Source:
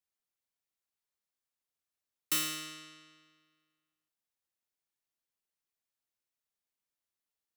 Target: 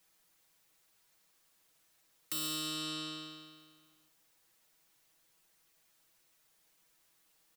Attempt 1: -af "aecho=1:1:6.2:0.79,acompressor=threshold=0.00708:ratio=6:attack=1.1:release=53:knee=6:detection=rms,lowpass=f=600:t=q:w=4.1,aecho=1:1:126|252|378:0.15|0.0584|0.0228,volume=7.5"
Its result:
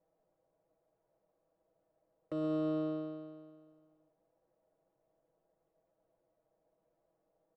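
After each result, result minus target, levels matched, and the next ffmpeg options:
500 Hz band +14.0 dB; compression: peak gain reduction -8 dB
-af "aecho=1:1:6.2:0.79,acompressor=threshold=0.00708:ratio=6:attack=1.1:release=53:knee=6:detection=rms,aecho=1:1:126|252|378:0.15|0.0584|0.0228,volume=7.5"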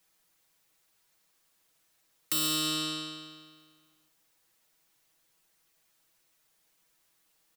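compression: peak gain reduction -8 dB
-af "aecho=1:1:6.2:0.79,acompressor=threshold=0.00237:ratio=6:attack=1.1:release=53:knee=6:detection=rms,aecho=1:1:126|252|378:0.15|0.0584|0.0228,volume=7.5"

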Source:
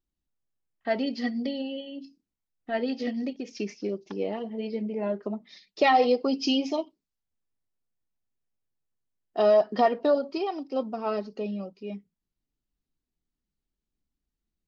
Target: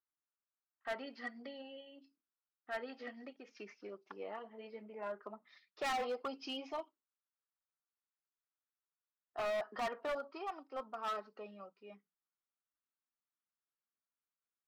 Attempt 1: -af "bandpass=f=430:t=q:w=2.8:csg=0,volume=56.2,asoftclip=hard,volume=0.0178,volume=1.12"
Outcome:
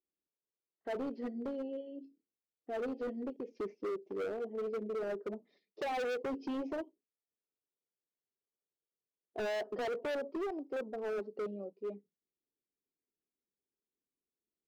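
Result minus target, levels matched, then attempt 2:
1 kHz band -5.5 dB
-af "bandpass=f=1300:t=q:w=2.8:csg=0,volume=56.2,asoftclip=hard,volume=0.0178,volume=1.12"

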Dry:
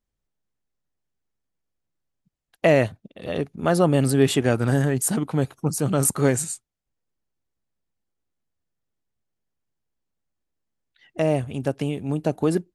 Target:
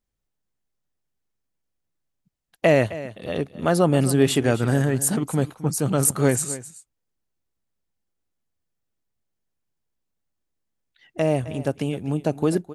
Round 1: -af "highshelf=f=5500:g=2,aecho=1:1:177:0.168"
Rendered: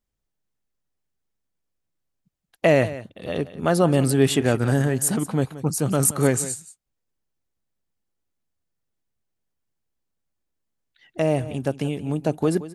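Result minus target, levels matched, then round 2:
echo 86 ms early
-af "highshelf=f=5500:g=2,aecho=1:1:263:0.168"

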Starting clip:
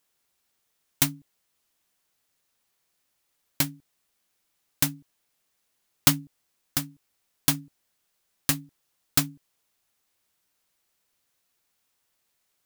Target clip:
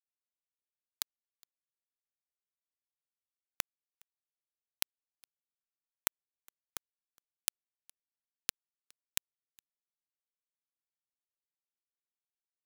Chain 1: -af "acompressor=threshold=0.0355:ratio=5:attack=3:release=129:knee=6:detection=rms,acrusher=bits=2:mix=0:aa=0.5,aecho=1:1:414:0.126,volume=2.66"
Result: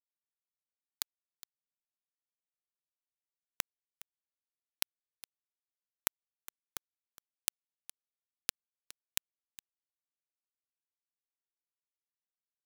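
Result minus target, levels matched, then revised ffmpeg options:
echo-to-direct +10.5 dB
-af "acompressor=threshold=0.0355:ratio=5:attack=3:release=129:knee=6:detection=rms,acrusher=bits=2:mix=0:aa=0.5,aecho=1:1:414:0.0376,volume=2.66"

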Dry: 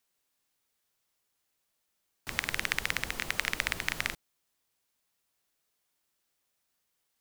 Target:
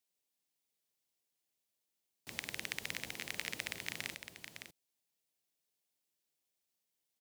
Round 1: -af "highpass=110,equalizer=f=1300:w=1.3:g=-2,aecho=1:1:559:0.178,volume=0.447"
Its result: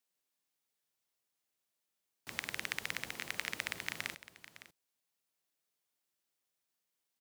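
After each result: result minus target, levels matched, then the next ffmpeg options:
echo-to-direct -7 dB; 1 kHz band +2.5 dB
-af "highpass=110,equalizer=f=1300:w=1.3:g=-2,aecho=1:1:559:0.398,volume=0.447"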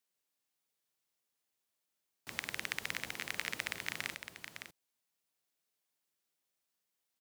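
1 kHz band +3.0 dB
-af "highpass=110,equalizer=f=1300:w=1.3:g=-9.5,aecho=1:1:559:0.398,volume=0.447"

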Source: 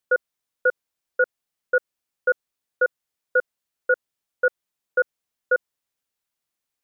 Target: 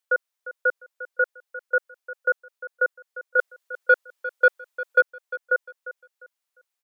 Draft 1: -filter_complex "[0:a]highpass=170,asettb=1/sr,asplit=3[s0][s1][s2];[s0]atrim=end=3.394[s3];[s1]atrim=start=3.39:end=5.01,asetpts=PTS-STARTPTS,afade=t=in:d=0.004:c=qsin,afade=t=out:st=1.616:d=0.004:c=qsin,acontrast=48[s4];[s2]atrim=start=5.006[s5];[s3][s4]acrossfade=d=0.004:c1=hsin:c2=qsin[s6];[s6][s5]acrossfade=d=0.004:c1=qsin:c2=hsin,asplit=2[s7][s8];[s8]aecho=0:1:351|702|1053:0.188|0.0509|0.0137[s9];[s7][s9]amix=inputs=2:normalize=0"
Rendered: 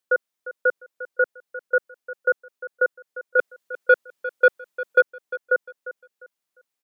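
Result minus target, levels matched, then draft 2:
125 Hz band +14.0 dB
-filter_complex "[0:a]highpass=580,asettb=1/sr,asplit=3[s0][s1][s2];[s0]atrim=end=3.394[s3];[s1]atrim=start=3.39:end=5.01,asetpts=PTS-STARTPTS,afade=t=in:d=0.004:c=qsin,afade=t=out:st=1.616:d=0.004:c=qsin,acontrast=48[s4];[s2]atrim=start=5.006[s5];[s3][s4]acrossfade=d=0.004:c1=hsin:c2=qsin[s6];[s6][s5]acrossfade=d=0.004:c1=qsin:c2=hsin,asplit=2[s7][s8];[s8]aecho=0:1:351|702|1053:0.188|0.0509|0.0137[s9];[s7][s9]amix=inputs=2:normalize=0"

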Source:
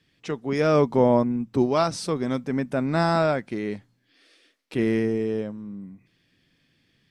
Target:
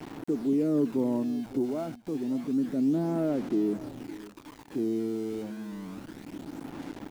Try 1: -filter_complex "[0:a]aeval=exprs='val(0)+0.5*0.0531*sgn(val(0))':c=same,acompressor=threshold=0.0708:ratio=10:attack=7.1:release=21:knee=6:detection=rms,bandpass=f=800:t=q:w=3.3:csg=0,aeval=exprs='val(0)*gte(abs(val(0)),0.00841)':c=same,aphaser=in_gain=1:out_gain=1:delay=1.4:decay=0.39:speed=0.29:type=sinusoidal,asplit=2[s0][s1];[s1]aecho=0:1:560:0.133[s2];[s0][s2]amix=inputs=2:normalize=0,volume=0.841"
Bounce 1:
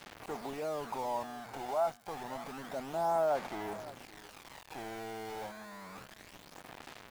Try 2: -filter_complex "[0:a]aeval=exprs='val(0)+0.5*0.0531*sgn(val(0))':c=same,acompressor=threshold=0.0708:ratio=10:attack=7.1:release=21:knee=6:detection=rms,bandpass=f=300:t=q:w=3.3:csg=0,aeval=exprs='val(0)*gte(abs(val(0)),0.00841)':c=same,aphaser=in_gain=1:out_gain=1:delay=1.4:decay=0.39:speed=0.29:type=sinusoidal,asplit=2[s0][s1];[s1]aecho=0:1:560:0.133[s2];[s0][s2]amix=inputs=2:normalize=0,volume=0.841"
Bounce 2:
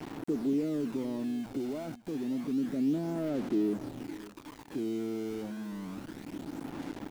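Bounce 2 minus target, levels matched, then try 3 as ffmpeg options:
compression: peak gain reduction +9.5 dB
-filter_complex "[0:a]aeval=exprs='val(0)+0.5*0.0531*sgn(val(0))':c=same,bandpass=f=300:t=q:w=3.3:csg=0,aeval=exprs='val(0)*gte(abs(val(0)),0.00841)':c=same,aphaser=in_gain=1:out_gain=1:delay=1.4:decay=0.39:speed=0.29:type=sinusoidal,asplit=2[s0][s1];[s1]aecho=0:1:560:0.133[s2];[s0][s2]amix=inputs=2:normalize=0,volume=0.841"

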